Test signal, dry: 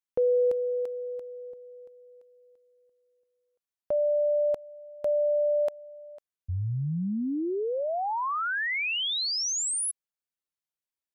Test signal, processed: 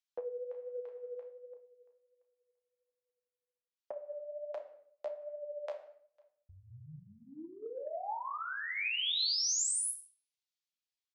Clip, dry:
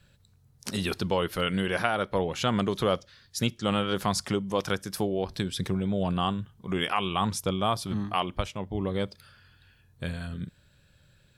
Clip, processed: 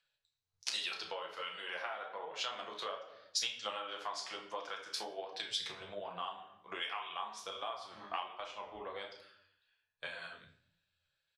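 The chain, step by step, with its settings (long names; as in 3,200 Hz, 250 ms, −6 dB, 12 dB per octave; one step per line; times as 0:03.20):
three-way crossover with the lows and the highs turned down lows −24 dB, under 480 Hz, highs −24 dB, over 6,600 Hz
double-tracking delay 33 ms −9 dB
rectangular room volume 230 cubic metres, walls mixed, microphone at 0.73 metres
downward compressor 16 to 1, threshold −38 dBFS
low-shelf EQ 330 Hz −10.5 dB
upward compression, threshold −58 dBFS
flanger 1.3 Hz, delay 5.7 ms, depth 9.3 ms, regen +41%
multiband upward and downward expander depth 100%
level +5 dB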